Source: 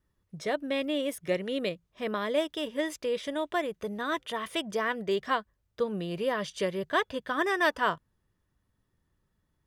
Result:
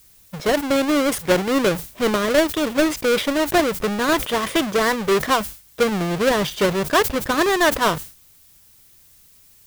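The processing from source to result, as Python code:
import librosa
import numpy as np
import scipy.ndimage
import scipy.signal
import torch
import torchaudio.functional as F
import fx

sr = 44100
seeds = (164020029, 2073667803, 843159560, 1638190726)

p1 = fx.halfwave_hold(x, sr)
p2 = fx.rider(p1, sr, range_db=10, speed_s=0.5)
p3 = p1 + (p2 * librosa.db_to_amplitude(2.5))
p4 = fx.high_shelf(p3, sr, hz=5700.0, db=-6.5)
p5 = fx.dmg_noise_colour(p4, sr, seeds[0], colour='blue', level_db=-52.0)
y = fx.sustainer(p5, sr, db_per_s=130.0)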